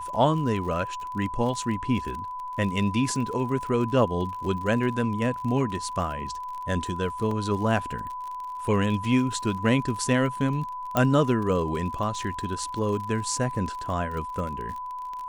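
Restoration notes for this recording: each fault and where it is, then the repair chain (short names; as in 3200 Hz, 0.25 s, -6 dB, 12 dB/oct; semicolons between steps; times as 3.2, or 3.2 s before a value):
crackle 45/s -33 dBFS
tone 1000 Hz -32 dBFS
7.31 gap 3.4 ms
10.97 pop -9 dBFS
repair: de-click; notch 1000 Hz, Q 30; interpolate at 7.31, 3.4 ms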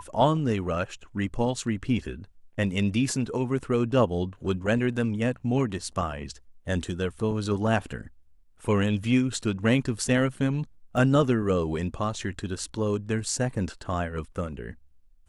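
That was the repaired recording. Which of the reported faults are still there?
10.97 pop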